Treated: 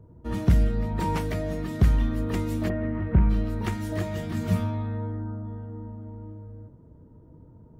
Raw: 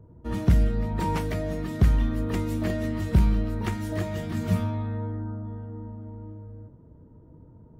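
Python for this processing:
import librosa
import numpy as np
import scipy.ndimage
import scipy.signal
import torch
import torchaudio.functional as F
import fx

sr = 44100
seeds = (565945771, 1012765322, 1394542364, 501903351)

y = fx.lowpass(x, sr, hz=2100.0, slope=24, at=(2.68, 3.29), fade=0.02)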